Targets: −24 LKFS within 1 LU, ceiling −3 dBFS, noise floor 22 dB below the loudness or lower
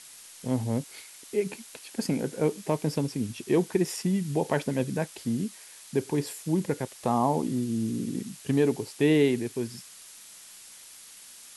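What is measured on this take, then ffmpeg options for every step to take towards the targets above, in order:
background noise floor −49 dBFS; target noise floor −51 dBFS; integrated loudness −28.5 LKFS; sample peak −11.5 dBFS; target loudness −24.0 LKFS
→ -af "afftdn=noise_reduction=6:noise_floor=-49"
-af "volume=4.5dB"

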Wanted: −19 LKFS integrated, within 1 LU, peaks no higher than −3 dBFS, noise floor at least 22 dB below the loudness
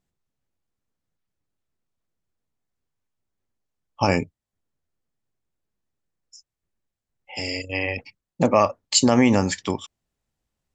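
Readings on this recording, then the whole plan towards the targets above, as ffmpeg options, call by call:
integrated loudness −22.0 LKFS; sample peak −4.0 dBFS; target loudness −19.0 LKFS
→ -af "volume=3dB,alimiter=limit=-3dB:level=0:latency=1"

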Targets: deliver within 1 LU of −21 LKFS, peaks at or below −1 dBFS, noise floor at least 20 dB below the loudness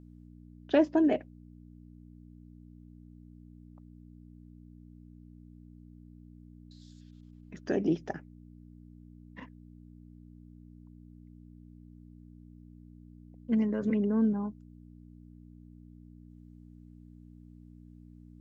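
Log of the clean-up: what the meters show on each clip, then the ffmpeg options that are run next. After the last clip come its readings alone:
mains hum 60 Hz; hum harmonics up to 300 Hz; level of the hum −49 dBFS; integrated loudness −29.5 LKFS; sample peak −13.0 dBFS; target loudness −21.0 LKFS
→ -af "bandreject=frequency=60:width_type=h:width=4,bandreject=frequency=120:width_type=h:width=4,bandreject=frequency=180:width_type=h:width=4,bandreject=frequency=240:width_type=h:width=4,bandreject=frequency=300:width_type=h:width=4"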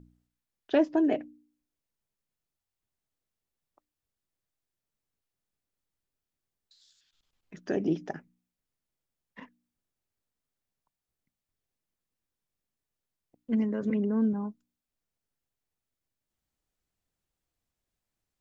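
mains hum none found; integrated loudness −29.0 LKFS; sample peak −13.5 dBFS; target loudness −21.0 LKFS
→ -af "volume=8dB"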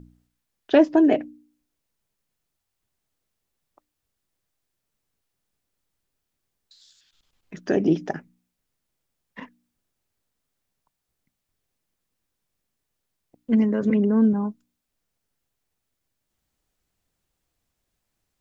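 integrated loudness −21.0 LKFS; sample peak −5.5 dBFS; background noise floor −81 dBFS

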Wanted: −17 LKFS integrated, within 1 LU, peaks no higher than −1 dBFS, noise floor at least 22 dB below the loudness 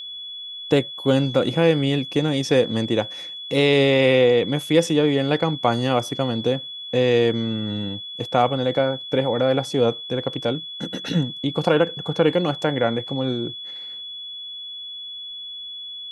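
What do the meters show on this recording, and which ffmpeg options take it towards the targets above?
interfering tone 3,400 Hz; level of the tone −32 dBFS; integrated loudness −22.0 LKFS; sample peak −4.0 dBFS; target loudness −17.0 LKFS
→ -af "bandreject=frequency=3400:width=30"
-af "volume=5dB,alimiter=limit=-1dB:level=0:latency=1"

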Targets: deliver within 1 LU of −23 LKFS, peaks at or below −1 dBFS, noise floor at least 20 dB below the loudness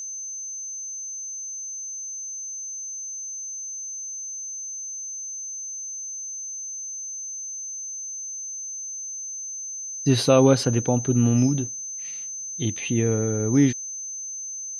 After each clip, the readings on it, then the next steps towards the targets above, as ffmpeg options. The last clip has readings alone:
interfering tone 6,200 Hz; level of the tone −31 dBFS; integrated loudness −26.0 LKFS; sample peak −4.5 dBFS; target loudness −23.0 LKFS
→ -af "bandreject=frequency=6200:width=30"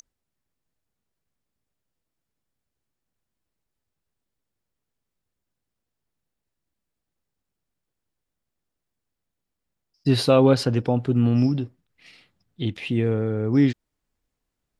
interfering tone none found; integrated loudness −21.5 LKFS; sample peak −4.5 dBFS; target loudness −23.0 LKFS
→ -af "volume=-1.5dB"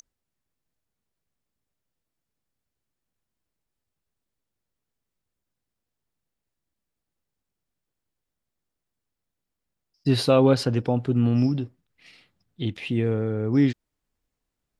integrated loudness −23.0 LKFS; sample peak −6.0 dBFS; background noise floor −84 dBFS

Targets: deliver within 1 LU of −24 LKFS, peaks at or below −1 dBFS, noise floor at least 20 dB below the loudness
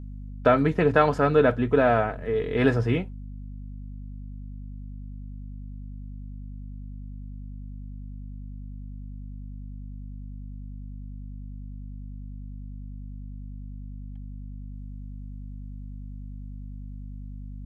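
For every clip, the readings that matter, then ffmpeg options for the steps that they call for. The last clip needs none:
mains hum 50 Hz; hum harmonics up to 250 Hz; level of the hum −35 dBFS; integrated loudness −22.5 LKFS; sample peak −4.5 dBFS; target loudness −24.0 LKFS
→ -af "bandreject=frequency=50:width_type=h:width=4,bandreject=frequency=100:width_type=h:width=4,bandreject=frequency=150:width_type=h:width=4,bandreject=frequency=200:width_type=h:width=4,bandreject=frequency=250:width_type=h:width=4"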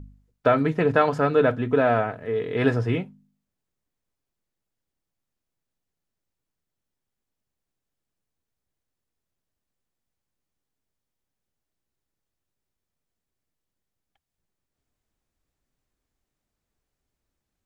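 mains hum none found; integrated loudness −22.5 LKFS; sample peak −5.0 dBFS; target loudness −24.0 LKFS
→ -af "volume=-1.5dB"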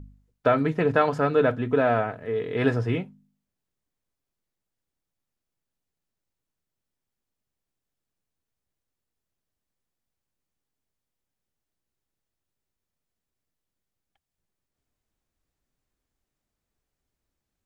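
integrated loudness −24.0 LKFS; sample peak −6.5 dBFS; background noise floor −86 dBFS

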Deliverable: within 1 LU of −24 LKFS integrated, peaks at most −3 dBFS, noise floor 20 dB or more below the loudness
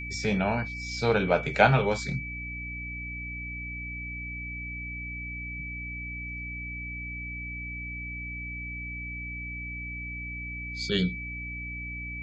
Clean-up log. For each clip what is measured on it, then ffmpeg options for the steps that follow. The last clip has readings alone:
mains hum 60 Hz; hum harmonics up to 300 Hz; level of the hum −37 dBFS; interfering tone 2,300 Hz; level of the tone −36 dBFS; integrated loudness −31.0 LKFS; sample peak −3.0 dBFS; target loudness −24.0 LKFS
→ -af "bandreject=frequency=60:width_type=h:width=4,bandreject=frequency=120:width_type=h:width=4,bandreject=frequency=180:width_type=h:width=4,bandreject=frequency=240:width_type=h:width=4,bandreject=frequency=300:width_type=h:width=4"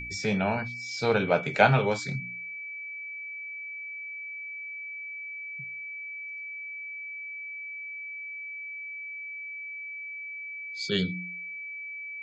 mains hum none found; interfering tone 2,300 Hz; level of the tone −36 dBFS
→ -af "bandreject=frequency=2300:width=30"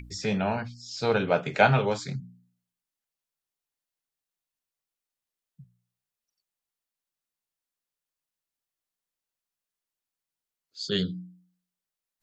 interfering tone none found; integrated loudness −27.0 LKFS; sample peak −3.5 dBFS; target loudness −24.0 LKFS
→ -af "volume=3dB,alimiter=limit=-3dB:level=0:latency=1"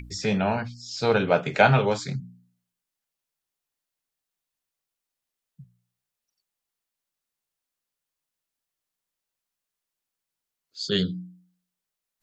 integrated loudness −24.0 LKFS; sample peak −3.0 dBFS; background noise floor −87 dBFS

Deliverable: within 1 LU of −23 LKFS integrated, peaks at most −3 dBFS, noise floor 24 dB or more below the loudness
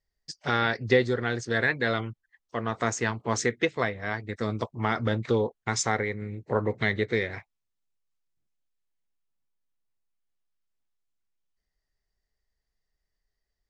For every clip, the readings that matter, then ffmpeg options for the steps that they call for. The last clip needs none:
integrated loudness −28.0 LKFS; sample peak −8.5 dBFS; target loudness −23.0 LKFS
→ -af "volume=5dB"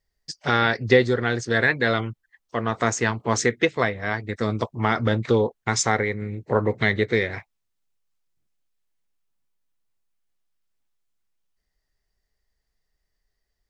integrated loudness −23.0 LKFS; sample peak −3.5 dBFS; background noise floor −78 dBFS

